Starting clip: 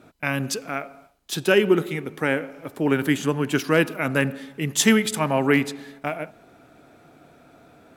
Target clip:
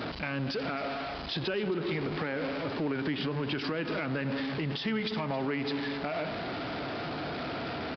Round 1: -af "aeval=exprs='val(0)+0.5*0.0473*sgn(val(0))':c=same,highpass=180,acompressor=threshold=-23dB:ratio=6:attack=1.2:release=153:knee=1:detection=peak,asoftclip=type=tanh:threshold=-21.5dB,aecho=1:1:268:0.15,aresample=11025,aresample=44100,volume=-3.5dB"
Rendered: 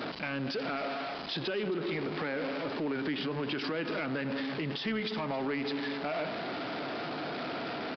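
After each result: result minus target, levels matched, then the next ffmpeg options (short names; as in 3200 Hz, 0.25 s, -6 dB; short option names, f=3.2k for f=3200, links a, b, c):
soft clip: distortion +14 dB; 125 Hz band -4.0 dB
-af "aeval=exprs='val(0)+0.5*0.0473*sgn(val(0))':c=same,highpass=180,acompressor=threshold=-23dB:ratio=6:attack=1.2:release=153:knee=1:detection=peak,asoftclip=type=tanh:threshold=-13dB,aecho=1:1:268:0.15,aresample=11025,aresample=44100,volume=-3.5dB"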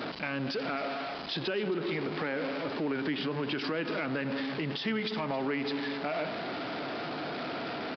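125 Hz band -4.0 dB
-af "aeval=exprs='val(0)+0.5*0.0473*sgn(val(0))':c=same,highpass=53,acompressor=threshold=-23dB:ratio=6:attack=1.2:release=153:knee=1:detection=peak,asoftclip=type=tanh:threshold=-13dB,aecho=1:1:268:0.15,aresample=11025,aresample=44100,volume=-3.5dB"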